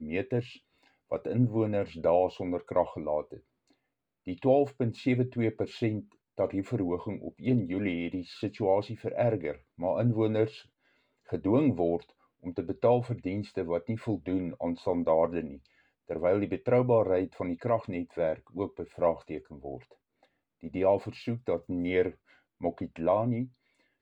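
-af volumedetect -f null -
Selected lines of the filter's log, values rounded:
mean_volume: -30.4 dB
max_volume: -12.5 dB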